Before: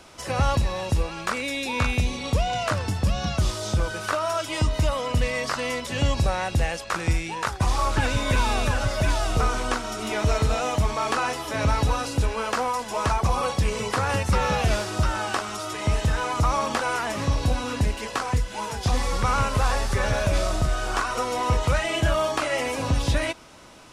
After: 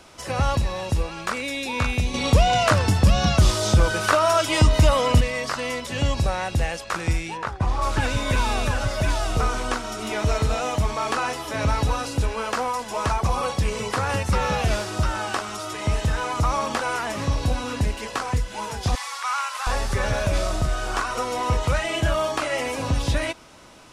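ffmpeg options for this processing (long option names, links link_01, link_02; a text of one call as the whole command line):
ffmpeg -i in.wav -filter_complex "[0:a]asettb=1/sr,asplit=3[link_01][link_02][link_03];[link_01]atrim=end=2.144[link_04];[link_02]atrim=start=2.14:end=5.21,asetpts=PTS-STARTPTS,afade=type=in:duration=0.004:curve=qsin,afade=type=out:start_time=3.066:duration=0.004:curve=qsin,acontrast=83[link_05];[link_03]atrim=start=5.206[link_06];[link_04][link_05]acrossfade=duration=0.004:curve1=hsin:curve2=qsin[link_07];[link_07][link_06]acrossfade=duration=0.004:curve1=qsin:curve2=hsin,asplit=3[link_08][link_09][link_10];[link_08]afade=type=out:start_time=7.36:duration=0.02[link_11];[link_09]lowpass=frequency=1600:poles=1,afade=type=in:start_time=7.36:duration=0.02,afade=type=out:start_time=7.81:duration=0.02[link_12];[link_10]afade=type=in:start_time=7.81:duration=0.02[link_13];[link_11][link_12][link_13]amix=inputs=3:normalize=0,asettb=1/sr,asplit=3[link_14][link_15][link_16];[link_14]atrim=end=18.954[link_17];[link_15]atrim=start=18.95:end=19.67,asetpts=PTS-STARTPTS,afade=type=in:duration=0.004:curve=qsin,afade=type=out:start_time=0.716:duration=0.004:curve=qsin,highpass=frequency=920:width=0.5412,highpass=frequency=920:width=1.3066[link_18];[link_16]atrim=start=19.666[link_19];[link_17][link_18]acrossfade=duration=0.004:curve1=hsin:curve2=qsin[link_20];[link_20][link_19]acrossfade=duration=0.004:curve1=qsin:curve2=hsin" out.wav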